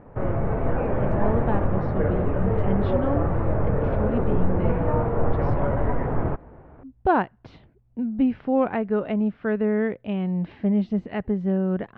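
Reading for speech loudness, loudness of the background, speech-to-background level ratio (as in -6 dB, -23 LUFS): -26.5 LUFS, -25.0 LUFS, -1.5 dB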